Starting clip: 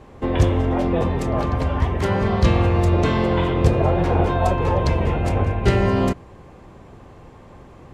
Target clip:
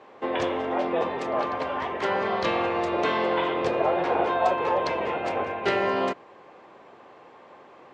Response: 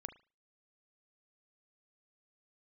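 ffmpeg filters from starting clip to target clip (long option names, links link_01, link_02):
-af "highpass=470,lowpass=4100"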